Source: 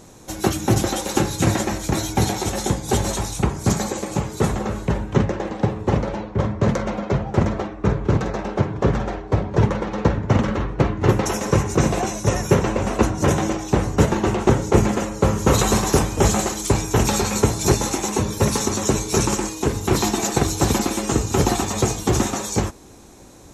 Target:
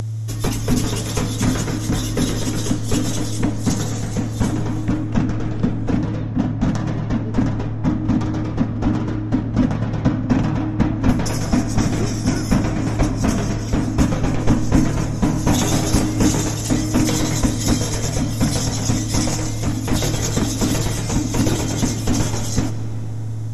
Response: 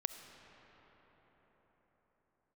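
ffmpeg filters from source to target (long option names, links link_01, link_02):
-filter_complex "[0:a]aeval=exprs='val(0)+0.0794*sin(2*PI*470*n/s)':channel_layout=same,afreqshift=-360,asplit=2[link_01][link_02];[1:a]atrim=start_sample=2205[link_03];[link_02][link_03]afir=irnorm=-1:irlink=0,volume=6.5dB[link_04];[link_01][link_04]amix=inputs=2:normalize=0,acompressor=mode=upward:threshold=-15dB:ratio=2.5,volume=-9.5dB"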